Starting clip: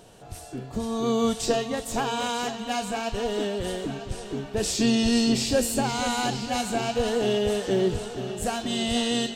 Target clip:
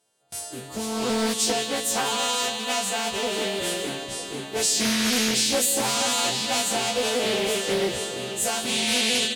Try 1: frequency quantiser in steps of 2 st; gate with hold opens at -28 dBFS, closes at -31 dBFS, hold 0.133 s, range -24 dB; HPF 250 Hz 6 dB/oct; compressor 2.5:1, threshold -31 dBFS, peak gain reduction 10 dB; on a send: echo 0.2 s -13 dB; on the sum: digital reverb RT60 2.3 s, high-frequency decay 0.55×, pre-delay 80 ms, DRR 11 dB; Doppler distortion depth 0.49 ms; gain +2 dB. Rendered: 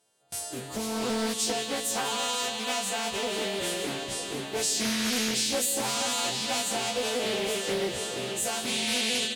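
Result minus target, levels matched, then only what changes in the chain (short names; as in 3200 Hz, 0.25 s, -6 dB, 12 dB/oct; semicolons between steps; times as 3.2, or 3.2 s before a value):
compressor: peak gain reduction +5 dB
change: compressor 2.5:1, threshold -22.5 dBFS, peak gain reduction 5 dB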